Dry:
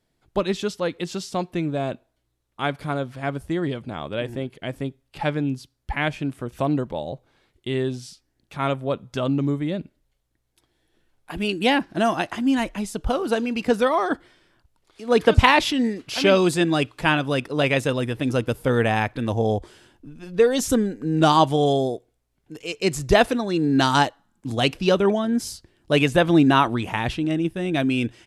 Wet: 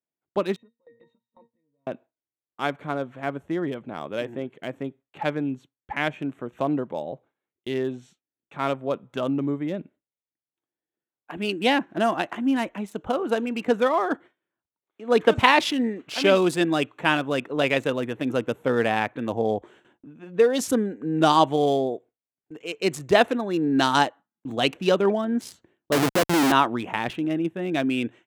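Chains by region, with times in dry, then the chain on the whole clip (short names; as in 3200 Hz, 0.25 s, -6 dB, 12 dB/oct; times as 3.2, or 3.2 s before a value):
0.56–1.87 octave resonator A#, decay 0.19 s + compressor 4:1, threshold -48 dBFS
25.92–26.52 high shelf 2800 Hz -9.5 dB + Schmitt trigger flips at -21 dBFS
whole clip: Wiener smoothing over 9 samples; HPF 200 Hz 12 dB/oct; gate with hold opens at -43 dBFS; gain -1 dB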